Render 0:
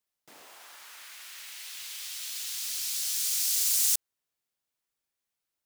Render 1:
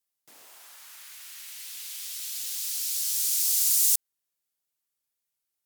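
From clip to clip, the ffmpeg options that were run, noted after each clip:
-af "aemphasis=mode=production:type=cd,volume=-4.5dB"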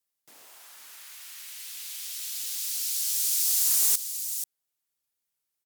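-af "aecho=1:1:483:0.299,volume=17dB,asoftclip=hard,volume=-17dB"

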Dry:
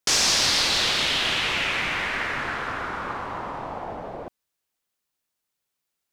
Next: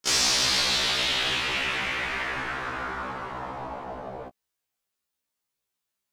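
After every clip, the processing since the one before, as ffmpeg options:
-af "afftfilt=real='re*1.73*eq(mod(b,3),0)':imag='im*1.73*eq(mod(b,3),0)':win_size=2048:overlap=0.75"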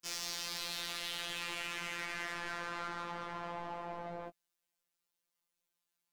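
-af "alimiter=limit=-21.5dB:level=0:latency=1,asoftclip=type=tanh:threshold=-35dB,afftfilt=real='hypot(re,im)*cos(PI*b)':imag='0':win_size=1024:overlap=0.75"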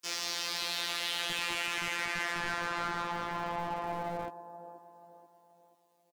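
-filter_complex "[0:a]acrossover=split=180|1200|5400[a][b][c][d];[a]acrusher=bits=6:dc=4:mix=0:aa=0.000001[e];[b]aecho=1:1:483|966|1449|1932:0.316|0.13|0.0532|0.0218[f];[d]alimiter=level_in=11dB:limit=-24dB:level=0:latency=1,volume=-11dB[g];[e][f][c][g]amix=inputs=4:normalize=0,volume=6.5dB"

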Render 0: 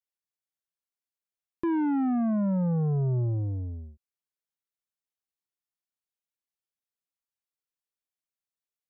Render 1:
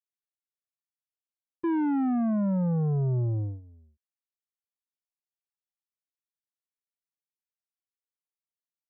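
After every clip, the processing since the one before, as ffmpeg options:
-af "agate=range=-16dB:threshold=-31dB:ratio=16:detection=peak"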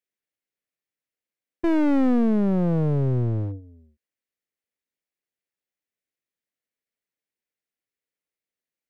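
-af "equalizer=f=125:t=o:w=1:g=4,equalizer=f=250:t=o:w=1:g=7,equalizer=f=500:t=o:w=1:g=10,equalizer=f=1k:t=o:w=1:g=-5,equalizer=f=2k:t=o:w=1:g=10,aeval=exprs='clip(val(0),-1,0.0531)':c=same"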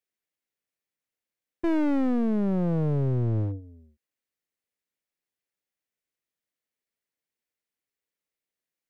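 -af "alimiter=limit=-17.5dB:level=0:latency=1"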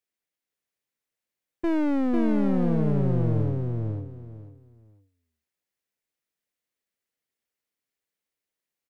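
-af "aecho=1:1:497|994|1491:0.668|0.147|0.0323"

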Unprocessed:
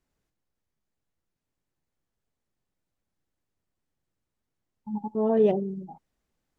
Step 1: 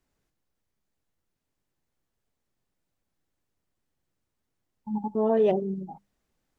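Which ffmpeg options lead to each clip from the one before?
-filter_complex "[0:a]bandreject=f=50:t=h:w=6,bandreject=f=100:t=h:w=6,bandreject=f=150:t=h:w=6,bandreject=f=200:t=h:w=6,acrossover=split=470[a][b];[a]alimiter=limit=-24dB:level=0:latency=1[c];[c][b]amix=inputs=2:normalize=0,volume=2.5dB"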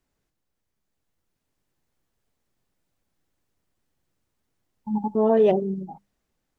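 -af "dynaudnorm=f=240:g=9:m=4.5dB"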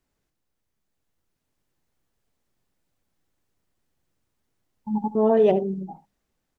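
-af "aecho=1:1:74:0.168"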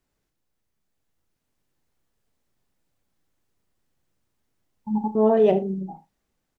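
-filter_complex "[0:a]asplit=2[a][b];[b]adelay=37,volume=-12dB[c];[a][c]amix=inputs=2:normalize=0"

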